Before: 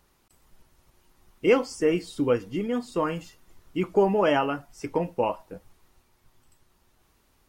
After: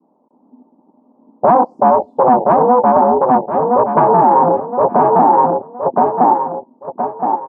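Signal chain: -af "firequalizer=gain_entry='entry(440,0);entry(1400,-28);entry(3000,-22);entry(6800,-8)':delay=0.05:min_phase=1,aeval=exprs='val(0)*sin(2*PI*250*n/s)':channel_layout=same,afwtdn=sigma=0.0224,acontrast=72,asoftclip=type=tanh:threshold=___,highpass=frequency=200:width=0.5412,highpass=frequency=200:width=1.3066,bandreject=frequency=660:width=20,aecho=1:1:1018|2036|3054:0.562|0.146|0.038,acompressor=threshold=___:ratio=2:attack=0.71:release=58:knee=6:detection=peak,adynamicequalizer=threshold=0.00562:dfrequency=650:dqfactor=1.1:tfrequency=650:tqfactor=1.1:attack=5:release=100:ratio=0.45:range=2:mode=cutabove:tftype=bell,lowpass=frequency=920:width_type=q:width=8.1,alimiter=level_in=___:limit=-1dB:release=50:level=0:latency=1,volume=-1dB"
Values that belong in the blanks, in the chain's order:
-20.5dB, -33dB, 22dB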